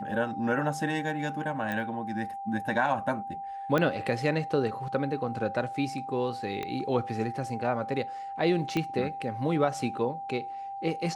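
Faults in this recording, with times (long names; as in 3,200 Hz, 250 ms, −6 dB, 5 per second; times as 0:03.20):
whistle 790 Hz −35 dBFS
0:01.72: click −20 dBFS
0:03.78: click −14 dBFS
0:06.63: click −20 dBFS
0:08.77: click −16 dBFS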